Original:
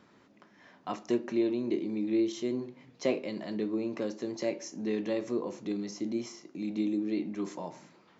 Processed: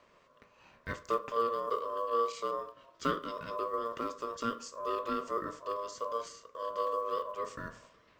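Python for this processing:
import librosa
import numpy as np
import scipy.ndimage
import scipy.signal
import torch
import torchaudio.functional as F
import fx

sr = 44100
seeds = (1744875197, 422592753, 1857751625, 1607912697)

y = fx.block_float(x, sr, bits=7)
y = y * np.sin(2.0 * np.pi * 810.0 * np.arange(len(y)) / sr)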